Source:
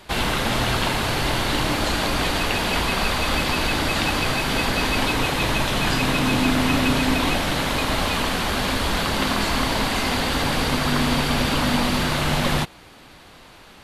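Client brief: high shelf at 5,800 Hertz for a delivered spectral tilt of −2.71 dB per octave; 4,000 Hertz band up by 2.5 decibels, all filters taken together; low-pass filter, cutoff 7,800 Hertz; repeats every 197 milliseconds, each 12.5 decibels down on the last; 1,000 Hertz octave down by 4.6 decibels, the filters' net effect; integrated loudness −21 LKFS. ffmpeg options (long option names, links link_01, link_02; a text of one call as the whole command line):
ffmpeg -i in.wav -af "lowpass=7800,equalizer=frequency=1000:width_type=o:gain=-6,equalizer=frequency=4000:width_type=o:gain=6,highshelf=frequency=5800:gain=-7,aecho=1:1:197|394|591:0.237|0.0569|0.0137" out.wav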